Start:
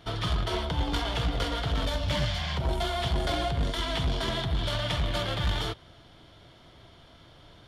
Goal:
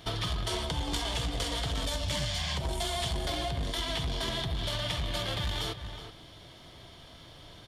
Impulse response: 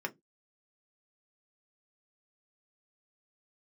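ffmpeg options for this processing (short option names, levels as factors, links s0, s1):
-filter_complex "[0:a]highshelf=f=4000:g=8.5,bandreject=f=1400:w=11,asplit=2[s0][s1];[s1]adelay=373.2,volume=0.178,highshelf=f=4000:g=-8.4[s2];[s0][s2]amix=inputs=2:normalize=0,acompressor=threshold=0.0282:ratio=6,asettb=1/sr,asplit=3[s3][s4][s5];[s3]atrim=end=0.444[s6];[s4]atrim=start=0.44:end=3.17,asetpts=PTS-STARTPTS,afade=t=in:d=0.004:c=qsin,afade=t=out:st=2.726:d=0.004:c=qsin,equalizer=f=8000:w=1.3:g=7.5[s7];[s5]atrim=start=3.166[s8];[s6][s7]acrossfade=d=0.004:c1=hsin:c2=qsin[s9];[s9][s8]acrossfade=d=0.004:c1=qsin:c2=hsin,volume=1.19"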